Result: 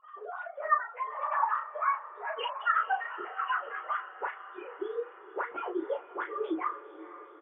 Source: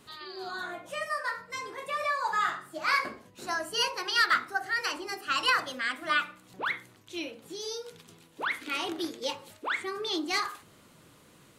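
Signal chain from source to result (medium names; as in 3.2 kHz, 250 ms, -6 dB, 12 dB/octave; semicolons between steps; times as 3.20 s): formants replaced by sine waves; resonant high shelf 1.7 kHz -12.5 dB, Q 1.5; in parallel at -0.5 dB: compression 20:1, threshold -38 dBFS, peak gain reduction 20.5 dB; on the sum: phaser 0.23 Hz, delay 1.2 ms, feedback 30%; plain phase-vocoder stretch 0.64×; doubling 34 ms -6 dB; on a send: echo that smears into a reverb 481 ms, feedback 63%, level -15 dB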